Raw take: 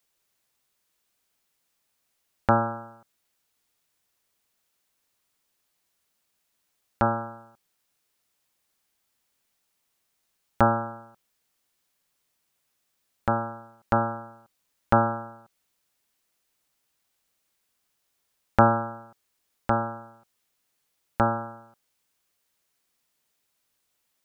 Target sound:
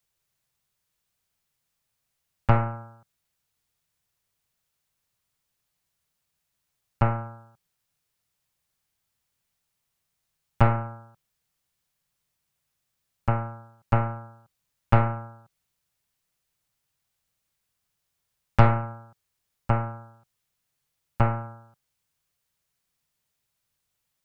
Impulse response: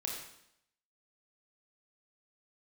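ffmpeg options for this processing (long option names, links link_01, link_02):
-af "aeval=exprs='0.841*(cos(1*acos(clip(val(0)/0.841,-1,1)))-cos(1*PI/2))+0.133*(cos(4*acos(clip(val(0)/0.841,-1,1)))-cos(4*PI/2))+0.0422*(cos(8*acos(clip(val(0)/0.841,-1,1)))-cos(8*PI/2))':channel_layout=same,lowshelf=frequency=190:width_type=q:width=1.5:gain=8,volume=-4dB"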